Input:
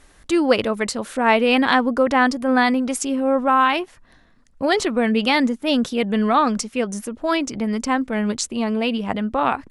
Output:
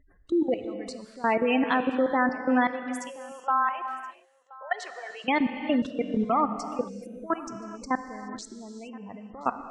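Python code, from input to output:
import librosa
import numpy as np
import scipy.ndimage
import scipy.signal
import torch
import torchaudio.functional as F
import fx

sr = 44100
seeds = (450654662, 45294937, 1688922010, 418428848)

y = fx.highpass(x, sr, hz=590.0, slope=24, at=(2.67, 5.24), fade=0.02)
y = fx.spec_gate(y, sr, threshold_db=-15, keep='strong')
y = fx.lowpass(y, sr, hz=3100.0, slope=6)
y = fx.level_steps(y, sr, step_db=19)
y = y + 10.0 ** (-22.5 / 20.0) * np.pad(y, (int(1025 * sr / 1000.0), 0))[:len(y)]
y = fx.rev_gated(y, sr, seeds[0], gate_ms=450, shape='flat', drr_db=8.0)
y = y * librosa.db_to_amplitude(-3.5)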